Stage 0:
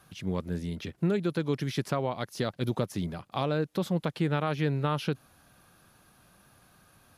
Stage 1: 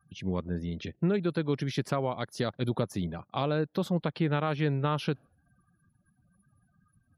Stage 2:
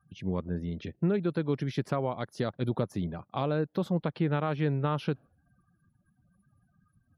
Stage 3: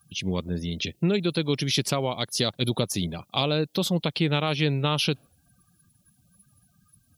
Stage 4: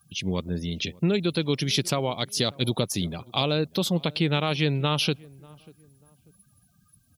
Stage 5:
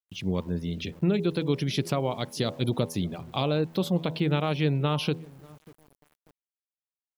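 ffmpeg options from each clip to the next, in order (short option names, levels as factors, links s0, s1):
-af "afftdn=nr=34:nf=-52"
-af "highshelf=f=2500:g=-8"
-af "aexciter=amount=5.2:drive=7.7:freq=2400,volume=1.5"
-filter_complex "[0:a]asplit=2[s0][s1];[s1]adelay=591,lowpass=f=990:p=1,volume=0.0708,asplit=2[s2][s3];[s3]adelay=591,lowpass=f=990:p=1,volume=0.36[s4];[s0][s2][s4]amix=inputs=3:normalize=0"
-af "equalizer=f=6900:t=o:w=2.9:g=-10.5,bandreject=f=81.69:t=h:w=4,bandreject=f=163.38:t=h:w=4,bandreject=f=245.07:t=h:w=4,bandreject=f=326.76:t=h:w=4,bandreject=f=408.45:t=h:w=4,bandreject=f=490.14:t=h:w=4,bandreject=f=571.83:t=h:w=4,bandreject=f=653.52:t=h:w=4,bandreject=f=735.21:t=h:w=4,bandreject=f=816.9:t=h:w=4,bandreject=f=898.59:t=h:w=4,bandreject=f=980.28:t=h:w=4,bandreject=f=1061.97:t=h:w=4,aeval=exprs='val(0)*gte(abs(val(0)),0.00282)':c=same"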